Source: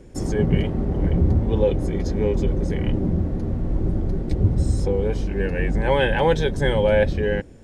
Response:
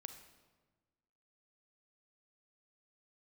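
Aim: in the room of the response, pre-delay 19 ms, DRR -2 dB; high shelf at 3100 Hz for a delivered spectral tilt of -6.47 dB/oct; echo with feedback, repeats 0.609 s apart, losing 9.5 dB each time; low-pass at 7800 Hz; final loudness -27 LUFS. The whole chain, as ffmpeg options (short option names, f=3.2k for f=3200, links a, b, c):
-filter_complex "[0:a]lowpass=7.8k,highshelf=f=3.1k:g=-8,aecho=1:1:609|1218|1827|2436:0.335|0.111|0.0365|0.012,asplit=2[a][b];[1:a]atrim=start_sample=2205,adelay=19[c];[b][c]afir=irnorm=-1:irlink=0,volume=7dB[d];[a][d]amix=inputs=2:normalize=0,volume=-9.5dB"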